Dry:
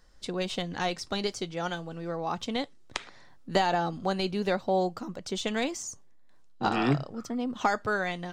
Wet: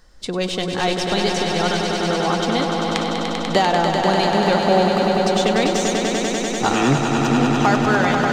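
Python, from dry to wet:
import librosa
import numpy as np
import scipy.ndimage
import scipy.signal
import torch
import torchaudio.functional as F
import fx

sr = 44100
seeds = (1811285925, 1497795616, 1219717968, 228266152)

p1 = np.clip(x, -10.0 ** (-25.0 / 20.0), 10.0 ** (-25.0 / 20.0))
p2 = x + (p1 * librosa.db_to_amplitude(-9.0))
p3 = fx.echo_swell(p2, sr, ms=98, loudest=5, wet_db=-6.5)
y = p3 * librosa.db_to_amplitude(6.0)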